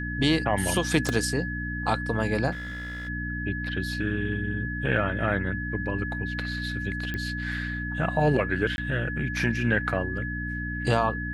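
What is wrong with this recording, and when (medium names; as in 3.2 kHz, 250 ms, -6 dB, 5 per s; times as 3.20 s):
hum 60 Hz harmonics 5 -33 dBFS
whine 1.7 kHz -33 dBFS
1.09 s: pop
2.51–3.09 s: clipped -32.5 dBFS
7.14 s: pop -18 dBFS
8.76–8.78 s: dropout 21 ms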